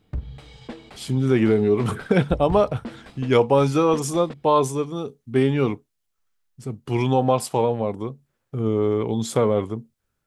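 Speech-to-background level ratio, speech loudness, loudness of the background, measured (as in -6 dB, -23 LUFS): 18.0 dB, -21.5 LUFS, -39.5 LUFS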